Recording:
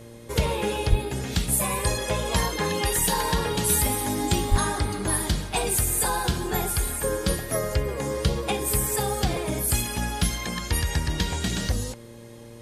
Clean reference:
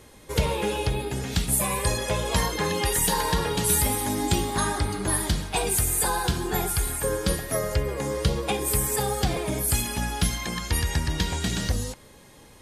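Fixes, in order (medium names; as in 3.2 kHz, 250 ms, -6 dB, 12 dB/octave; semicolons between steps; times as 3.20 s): de-hum 116.2 Hz, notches 5; 0.89–1.01 s: high-pass 140 Hz 24 dB/octave; 4.50–4.62 s: high-pass 140 Hz 24 dB/octave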